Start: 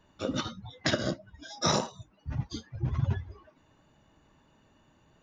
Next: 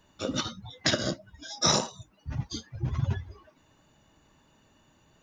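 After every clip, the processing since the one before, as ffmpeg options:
-af "highshelf=f=4k:g=9.5"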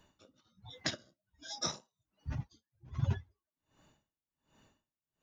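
-af "aeval=exprs='val(0)*pow(10,-39*(0.5-0.5*cos(2*PI*1.3*n/s))/20)':c=same,volume=-2.5dB"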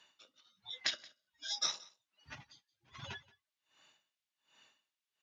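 -filter_complex "[0:a]bandpass=f=3.2k:t=q:w=1:csg=0,asplit=2[a][b];[b]alimiter=level_in=9dB:limit=-24dB:level=0:latency=1:release=153,volume=-9dB,volume=2.5dB[c];[a][c]amix=inputs=2:normalize=0,aecho=1:1:176:0.075,volume=1dB"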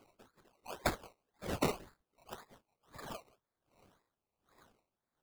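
-af "afftfilt=real='real(if(lt(b,960),b+48*(1-2*mod(floor(b/48),2)),b),0)':imag='imag(if(lt(b,960),b+48*(1-2*mod(floor(b/48),2)),b),0)':win_size=2048:overlap=0.75,afftfilt=real='hypot(re,im)*cos(2*PI*random(0))':imag='hypot(re,im)*sin(2*PI*random(1))':win_size=512:overlap=0.75,acrusher=samples=21:mix=1:aa=0.000001:lfo=1:lforange=12.6:lforate=1.9,volume=7.5dB"

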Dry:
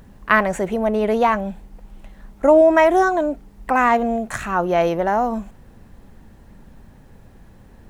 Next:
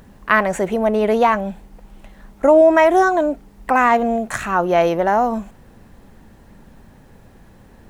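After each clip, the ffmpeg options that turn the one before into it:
-filter_complex "[0:a]lowshelf=f=140:g=-5.5,asplit=2[a][b];[b]alimiter=limit=-9dB:level=0:latency=1:release=197,volume=-1dB[c];[a][c]amix=inputs=2:normalize=0,volume=-2.5dB"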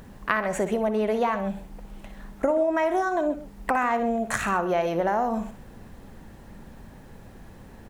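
-filter_complex "[0:a]acompressor=threshold=-22dB:ratio=5,asplit=2[a][b];[b]aecho=0:1:60|131:0.237|0.168[c];[a][c]amix=inputs=2:normalize=0"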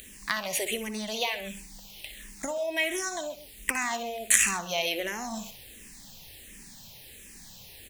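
-filter_complex "[0:a]aexciter=amount=9.4:drive=7.5:freq=2.1k,asplit=2[a][b];[b]afreqshift=-1.4[c];[a][c]amix=inputs=2:normalize=1,volume=-7dB"

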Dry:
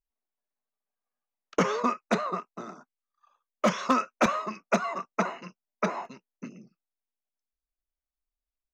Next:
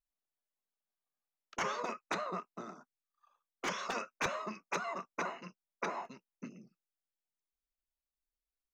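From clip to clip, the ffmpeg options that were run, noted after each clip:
-af "afftfilt=real='re*lt(hypot(re,im),0.251)':imag='im*lt(hypot(re,im),0.251)':win_size=1024:overlap=0.75,volume=-5.5dB"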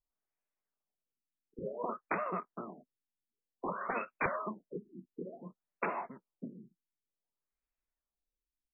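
-af "afftfilt=real='re*lt(b*sr/1024,370*pow(2800/370,0.5+0.5*sin(2*PI*0.55*pts/sr)))':imag='im*lt(b*sr/1024,370*pow(2800/370,0.5+0.5*sin(2*PI*0.55*pts/sr)))':win_size=1024:overlap=0.75,volume=2.5dB"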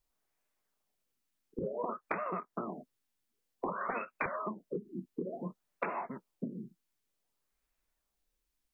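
-af "acompressor=threshold=-43dB:ratio=6,volume=9.5dB"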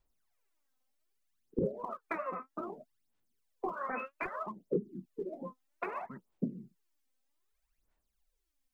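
-af "aphaser=in_gain=1:out_gain=1:delay=3.9:decay=0.73:speed=0.63:type=sinusoidal,volume=-5dB"

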